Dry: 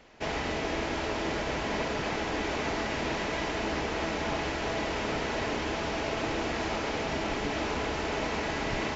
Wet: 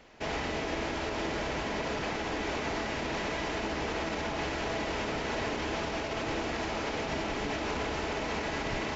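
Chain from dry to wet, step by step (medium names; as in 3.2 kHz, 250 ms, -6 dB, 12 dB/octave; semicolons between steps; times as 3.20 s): peak limiter -24 dBFS, peak gain reduction 6.5 dB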